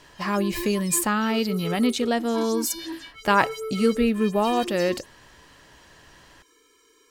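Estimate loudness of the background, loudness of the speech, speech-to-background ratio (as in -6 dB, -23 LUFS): -35.0 LUFS, -24.0 LUFS, 11.0 dB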